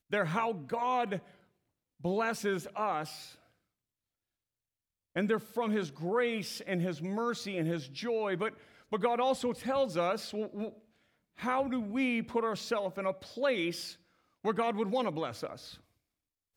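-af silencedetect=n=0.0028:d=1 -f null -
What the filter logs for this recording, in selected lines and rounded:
silence_start: 3.35
silence_end: 5.15 | silence_duration: 1.80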